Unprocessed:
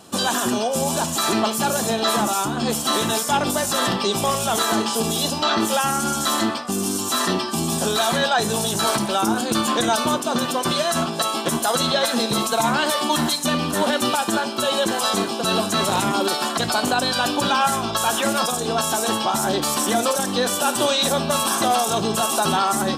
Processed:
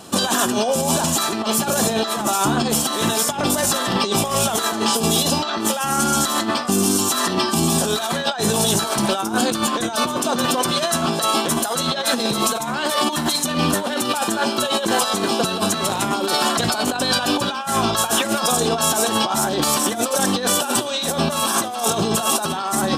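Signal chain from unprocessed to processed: negative-ratio compressor -23 dBFS, ratio -0.5; gain +3.5 dB

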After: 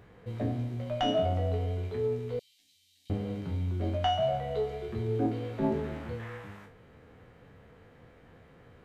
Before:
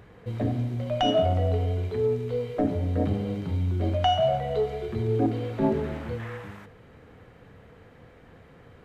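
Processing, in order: spectral trails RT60 0.33 s; 2.39–3.1 inverse Chebyshev high-pass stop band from 1400 Hz, stop band 50 dB; gain -5.5 dB

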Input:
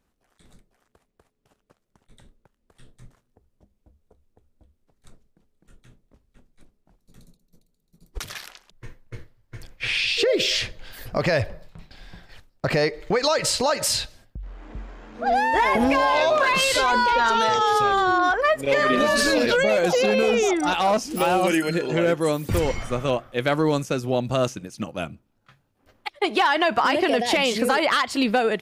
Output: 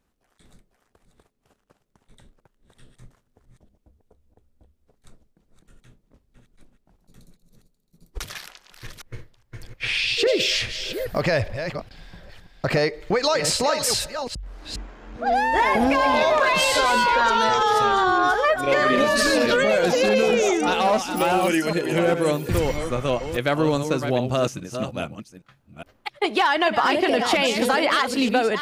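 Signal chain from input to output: reverse delay 0.41 s, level -8 dB

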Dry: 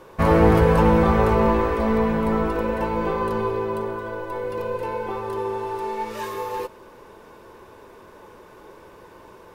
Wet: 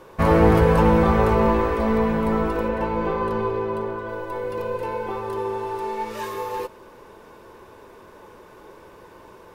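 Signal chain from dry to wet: 2.68–4.09 high shelf 6600 Hz -10 dB

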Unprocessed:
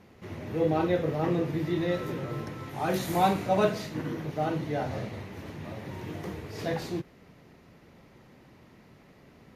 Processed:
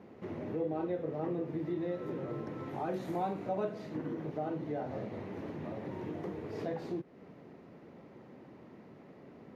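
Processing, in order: HPF 320 Hz 12 dB/oct; tilt -4.5 dB/oct; compressor 2.5:1, threshold -38 dBFS, peak gain reduction 14.5 dB

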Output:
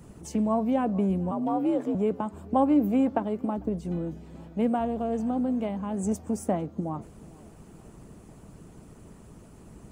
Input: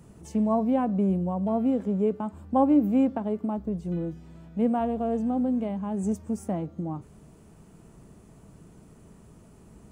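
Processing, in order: tape echo 0.45 s, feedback 56%, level -24 dB, low-pass 5000 Hz; harmonic-percussive split percussive +8 dB; 1.31–1.95 frequency shift +58 Hz; gain -1.5 dB

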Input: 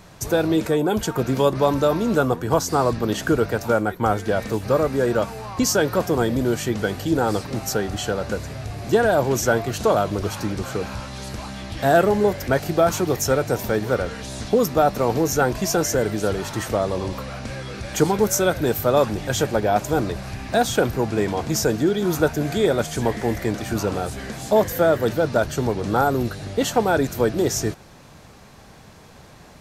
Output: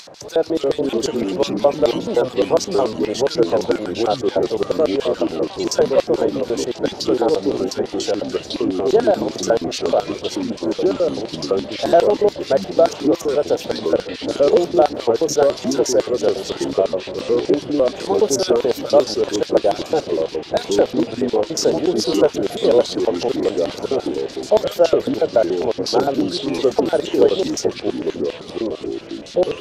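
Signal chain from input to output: LFO band-pass square 7 Hz 540–4700 Hz; echoes that change speed 0.211 s, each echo -3 st, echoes 3; upward compressor, threshold -39 dBFS; gain +7.5 dB

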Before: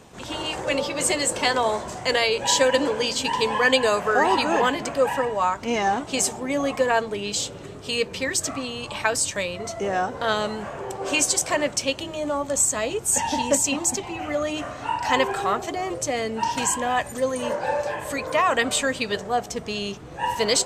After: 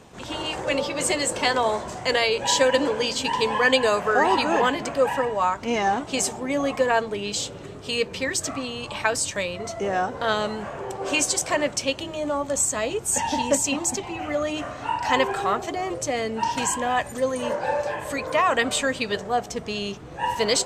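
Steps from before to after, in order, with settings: high shelf 7400 Hz -4.5 dB

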